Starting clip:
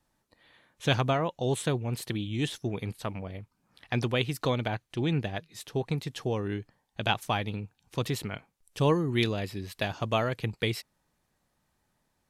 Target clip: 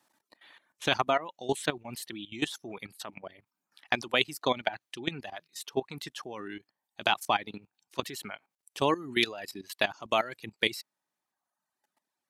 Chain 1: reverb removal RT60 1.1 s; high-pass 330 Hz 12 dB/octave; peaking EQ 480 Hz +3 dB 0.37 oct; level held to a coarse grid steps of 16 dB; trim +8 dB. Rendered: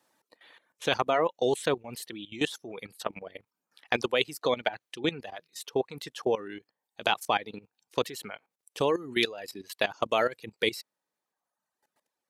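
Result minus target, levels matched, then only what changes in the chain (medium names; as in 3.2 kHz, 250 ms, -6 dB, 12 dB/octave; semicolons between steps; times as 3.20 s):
500 Hz band +3.0 dB
change: peaking EQ 480 Hz -7.5 dB 0.37 oct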